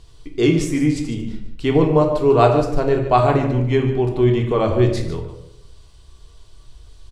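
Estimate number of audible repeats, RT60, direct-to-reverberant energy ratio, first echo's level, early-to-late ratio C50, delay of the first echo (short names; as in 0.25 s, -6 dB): 1, 0.80 s, 1.5 dB, -11.5 dB, 6.0 dB, 0.147 s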